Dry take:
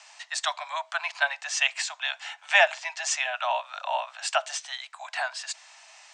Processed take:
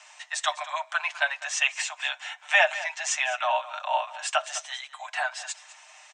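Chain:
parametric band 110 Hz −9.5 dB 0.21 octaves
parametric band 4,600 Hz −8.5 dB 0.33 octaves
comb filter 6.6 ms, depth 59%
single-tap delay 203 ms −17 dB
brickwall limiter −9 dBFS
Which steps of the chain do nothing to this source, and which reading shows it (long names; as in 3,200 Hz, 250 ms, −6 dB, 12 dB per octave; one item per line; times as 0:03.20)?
parametric band 110 Hz: nothing at its input below 510 Hz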